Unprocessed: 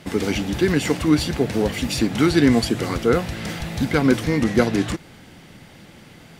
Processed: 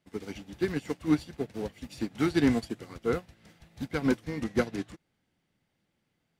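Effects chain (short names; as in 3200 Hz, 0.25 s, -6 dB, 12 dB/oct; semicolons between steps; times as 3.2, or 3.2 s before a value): in parallel at -11 dB: wavefolder -13 dBFS; on the sum: upward expander 2.5:1, over -29 dBFS; gain -7.5 dB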